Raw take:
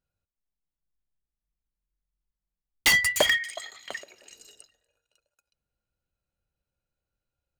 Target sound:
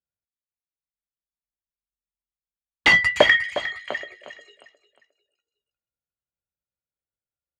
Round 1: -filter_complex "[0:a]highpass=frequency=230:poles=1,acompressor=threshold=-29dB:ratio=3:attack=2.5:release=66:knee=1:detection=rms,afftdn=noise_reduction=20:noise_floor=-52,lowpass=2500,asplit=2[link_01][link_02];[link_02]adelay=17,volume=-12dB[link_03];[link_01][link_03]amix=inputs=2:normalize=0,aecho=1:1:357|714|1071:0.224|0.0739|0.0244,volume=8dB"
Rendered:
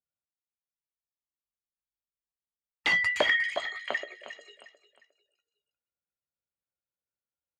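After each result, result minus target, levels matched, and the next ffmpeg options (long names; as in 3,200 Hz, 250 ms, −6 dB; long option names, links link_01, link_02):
downward compressor: peak gain reduction +11 dB; 125 Hz band −5.5 dB
-filter_complex "[0:a]highpass=frequency=230:poles=1,afftdn=noise_reduction=20:noise_floor=-52,lowpass=2500,asplit=2[link_01][link_02];[link_02]adelay=17,volume=-12dB[link_03];[link_01][link_03]amix=inputs=2:normalize=0,aecho=1:1:357|714|1071:0.224|0.0739|0.0244,volume=8dB"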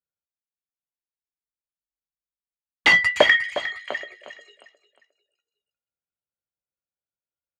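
125 Hz band −4.5 dB
-filter_complex "[0:a]highpass=frequency=82:poles=1,afftdn=noise_reduction=20:noise_floor=-52,lowpass=2500,asplit=2[link_01][link_02];[link_02]adelay=17,volume=-12dB[link_03];[link_01][link_03]amix=inputs=2:normalize=0,aecho=1:1:357|714|1071:0.224|0.0739|0.0244,volume=8dB"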